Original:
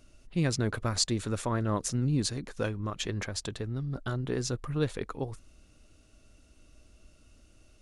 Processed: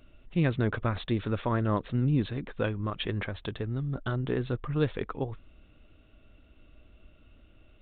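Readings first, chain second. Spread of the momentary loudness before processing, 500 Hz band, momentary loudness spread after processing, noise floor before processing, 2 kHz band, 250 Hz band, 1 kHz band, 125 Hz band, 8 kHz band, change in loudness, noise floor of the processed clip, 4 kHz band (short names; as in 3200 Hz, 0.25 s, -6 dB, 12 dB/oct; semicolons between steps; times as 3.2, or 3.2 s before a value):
8 LU, +2.0 dB, 8 LU, -60 dBFS, +2.0 dB, +2.0 dB, +2.0 dB, +2.0 dB, under -40 dB, +1.0 dB, -58 dBFS, -6.0 dB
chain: downsampling 8000 Hz; gain +2 dB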